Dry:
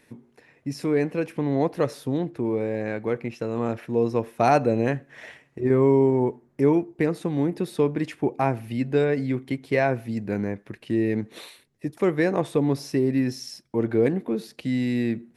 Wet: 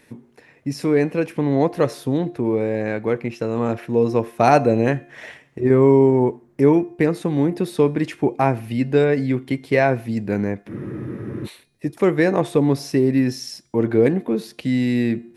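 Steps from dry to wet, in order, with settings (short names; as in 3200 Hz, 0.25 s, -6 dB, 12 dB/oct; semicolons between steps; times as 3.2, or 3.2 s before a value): de-hum 351.1 Hz, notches 30; spectral freeze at 10.7, 0.77 s; gain +5 dB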